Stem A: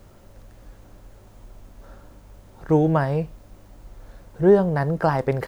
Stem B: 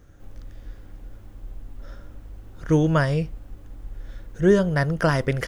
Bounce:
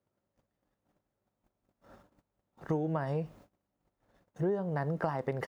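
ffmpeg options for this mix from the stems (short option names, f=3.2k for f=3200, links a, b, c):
-filter_complex "[0:a]highshelf=f=3.6k:g=-8,volume=-3.5dB,asplit=2[a][b];[1:a]aeval=exprs='val(0)*pow(10,-21*(0.5-0.5*cos(2*PI*5.5*n/s))/20)':c=same,adelay=0.9,volume=-7.5dB[c];[b]apad=whole_len=241277[d];[c][d]sidechaincompress=threshold=-25dB:ratio=8:attack=16:release=956[e];[a][e]amix=inputs=2:normalize=0,highpass=130,agate=range=-27dB:threshold=-52dB:ratio=16:detection=peak,acompressor=threshold=-29dB:ratio=6"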